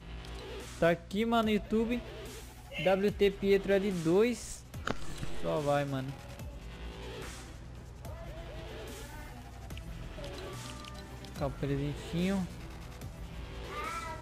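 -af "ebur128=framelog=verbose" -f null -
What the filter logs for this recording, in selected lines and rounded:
Integrated loudness:
  I:         -33.6 LUFS
  Threshold: -44.9 LUFS
Loudness range:
  LRA:        14.2 LU
  Threshold: -54.9 LUFS
  LRA low:   -45.1 LUFS
  LRA high:  -30.9 LUFS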